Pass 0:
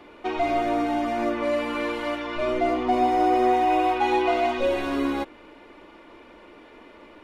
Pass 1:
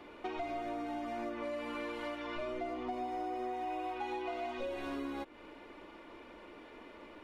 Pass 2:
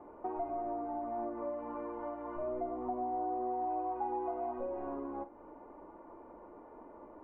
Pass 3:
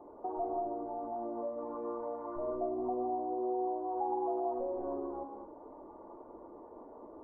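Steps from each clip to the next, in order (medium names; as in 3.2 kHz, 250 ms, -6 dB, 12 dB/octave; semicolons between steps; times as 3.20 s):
compression 5:1, threshold -33 dBFS, peak gain reduction 14.5 dB; trim -4.5 dB
four-pole ladder low-pass 1.1 kHz, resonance 40%; on a send: flutter echo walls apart 8.3 m, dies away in 0.24 s; on the sum: trim +6.5 dB
resonances exaggerated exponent 1.5; reverberation, pre-delay 3 ms, DRR 2.5 dB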